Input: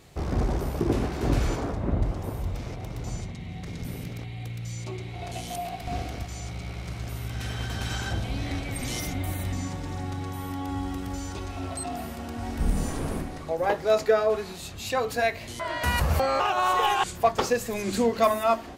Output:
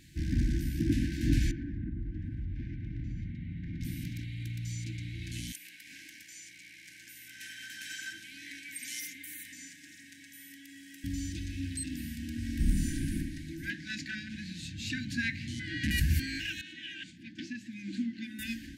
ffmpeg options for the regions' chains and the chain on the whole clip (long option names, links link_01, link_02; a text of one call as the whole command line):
ffmpeg -i in.wav -filter_complex "[0:a]asettb=1/sr,asplit=3[link_01][link_02][link_03];[link_01]atrim=end=1.514[link_04];[link_02]atrim=start=1.51:end=3.81,asetpts=PTS-STARTPTS,afade=type=in:duration=0.004:curve=qsin,afade=type=out:start_time=2.296:duration=0.004:curve=qsin,lowpass=1700,acompressor=threshold=-29dB:ratio=12:attack=3.2:release=140:knee=1:detection=peak[link_05];[link_03]atrim=start=3.806[link_06];[link_04][link_05]acrossfade=duration=0.004:curve1=hsin:curve2=qsin[link_07];[link_07][link_06]acrossfade=duration=0.004:curve1=qsin:curve2=hsin,asettb=1/sr,asplit=3[link_08][link_09][link_10];[link_08]atrim=end=5.524[link_11];[link_09]atrim=start=5.52:end=11.04,asetpts=PTS-STARTPTS,afade=type=in:duration=0.004:curve=qsin,afade=type=out:start_time=5.516:duration=0.004:curve=qsin,highpass=790,equalizer=frequency=3900:width_type=o:width=0.97:gain=-6.5[link_12];[link_10]atrim=start=11.036[link_13];[link_11][link_12]acrossfade=duration=0.004:curve1=hsin:curve2=qsin[link_14];[link_14][link_13]acrossfade=duration=0.004:curve1=qsin:curve2=hsin,asettb=1/sr,asplit=3[link_15][link_16][link_17];[link_15]atrim=end=13.704[link_18];[link_16]atrim=start=13.7:end=15.91,asetpts=PTS-STARTPTS,afade=type=in:duration=0.004:curve=qsin,afade=type=out:start_time=2.206:duration=0.004:curve=qsin,asubboost=boost=9:cutoff=210,volume=17dB,asoftclip=hard,volume=-17dB,highpass=150,lowpass=6400[link_19];[link_17]atrim=start=15.906[link_20];[link_18][link_19]acrossfade=duration=0.004:curve1=hsin:curve2=qsin[link_21];[link_21][link_20]acrossfade=duration=0.004:curve1=qsin:curve2=hsin,asettb=1/sr,asplit=3[link_22][link_23][link_24];[link_22]atrim=end=16.614[link_25];[link_23]atrim=start=16.61:end=18.39,asetpts=PTS-STARTPTS,afade=type=in:duration=0.004:curve=qsin,afade=type=out:start_time=1.776:duration=0.004:curve=qsin,highpass=270,lowpass=2500,equalizer=frequency=1600:width=0.98:gain=-9.5[link_26];[link_24]atrim=start=18.386[link_27];[link_25][link_26]acrossfade=duration=0.004:curve1=hsin:curve2=qsin[link_28];[link_28][link_27]acrossfade=duration=0.004:curve1=qsin:curve2=hsin,afftfilt=real='re*(1-between(b*sr/4096,340,1500))':imag='im*(1-between(b*sr/4096,340,1500))':win_size=4096:overlap=0.75,equalizer=frequency=380:width_type=o:width=0.98:gain=3.5,volume=-2.5dB" out.wav